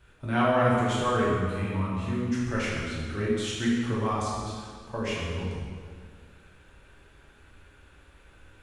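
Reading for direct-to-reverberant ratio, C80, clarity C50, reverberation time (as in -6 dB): -7.0 dB, 1.0 dB, -1.0 dB, 2.0 s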